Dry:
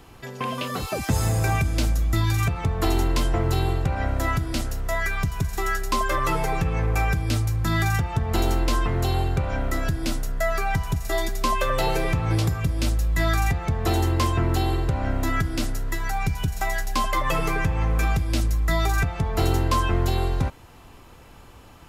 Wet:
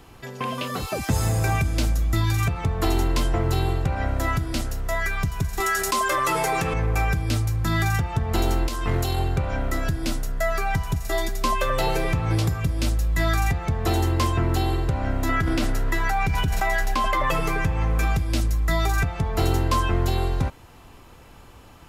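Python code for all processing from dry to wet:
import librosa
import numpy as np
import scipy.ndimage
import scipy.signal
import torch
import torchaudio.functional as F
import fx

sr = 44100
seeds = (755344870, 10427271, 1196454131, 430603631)

y = fx.chain(x, sr, fx.highpass(hz=360.0, slope=6),
    fx.peak_eq(hz=8800.0, db=5.0, octaves=1.1),
    fx.env_flatten(amount_pct=70), at=(5.6, 6.74))
y = fx.chain(y, sr, fx.high_shelf(hz=3700.0, db=6.5),
    fx.over_compress(threshold_db=-23.0, ratio=-0.5), at=(8.67, 9.19))
y = fx.chain(y, sr, fx.bass_treble(bass_db=-4, treble_db=-8),
    fx.env_flatten(amount_pct=100), at=(15.29, 17.31))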